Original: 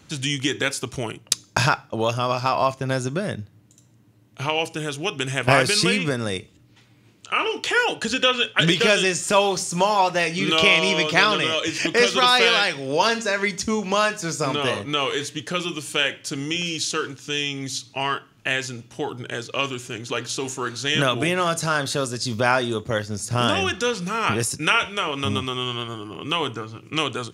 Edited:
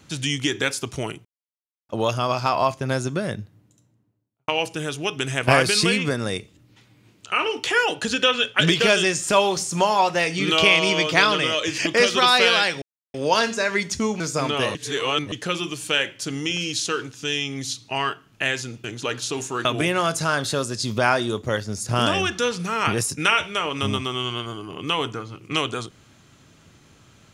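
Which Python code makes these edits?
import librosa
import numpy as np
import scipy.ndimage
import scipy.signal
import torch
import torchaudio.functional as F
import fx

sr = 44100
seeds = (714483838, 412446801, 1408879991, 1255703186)

y = fx.studio_fade_out(x, sr, start_s=3.25, length_s=1.23)
y = fx.edit(y, sr, fx.silence(start_s=1.25, length_s=0.64),
    fx.insert_silence(at_s=12.82, length_s=0.32),
    fx.cut(start_s=13.88, length_s=0.37),
    fx.reverse_span(start_s=14.8, length_s=0.57),
    fx.cut(start_s=18.89, length_s=1.02),
    fx.cut(start_s=20.72, length_s=0.35), tone=tone)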